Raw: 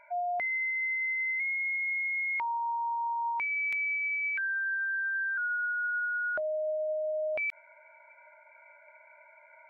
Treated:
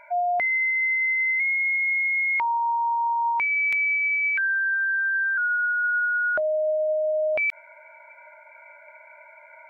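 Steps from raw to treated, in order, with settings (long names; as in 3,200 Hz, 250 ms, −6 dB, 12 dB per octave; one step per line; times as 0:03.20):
0:04.55–0:05.84: high-frequency loss of the air 54 metres
level +8 dB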